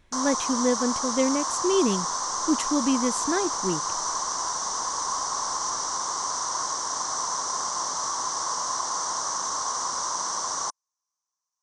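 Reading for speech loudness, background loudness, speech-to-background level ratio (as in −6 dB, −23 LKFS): −27.0 LKFS, −27.0 LKFS, 0.0 dB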